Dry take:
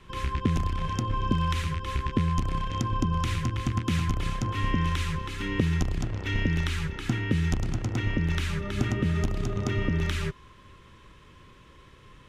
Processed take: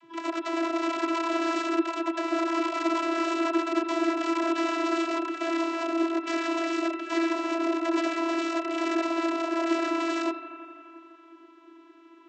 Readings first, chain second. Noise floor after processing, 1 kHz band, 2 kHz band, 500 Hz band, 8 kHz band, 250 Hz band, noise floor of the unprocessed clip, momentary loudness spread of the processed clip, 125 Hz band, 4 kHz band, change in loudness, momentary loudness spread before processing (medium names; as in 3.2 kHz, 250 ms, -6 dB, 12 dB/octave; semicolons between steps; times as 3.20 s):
-53 dBFS, +5.0 dB, +2.0 dB, +8.5 dB, -1.0 dB, +4.5 dB, -53 dBFS, 3 LU, under -40 dB, 0.0 dB, +1.0 dB, 4 LU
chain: bass shelf 390 Hz +7.5 dB; integer overflow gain 20.5 dB; vocoder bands 32, saw 332 Hz; on a send: bucket-brigade echo 85 ms, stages 2048, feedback 80%, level -13.5 dB